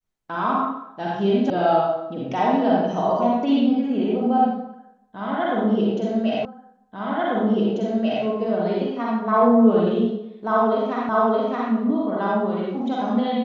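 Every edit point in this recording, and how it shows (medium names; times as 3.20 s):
1.50 s: sound stops dead
6.45 s: repeat of the last 1.79 s
11.09 s: repeat of the last 0.62 s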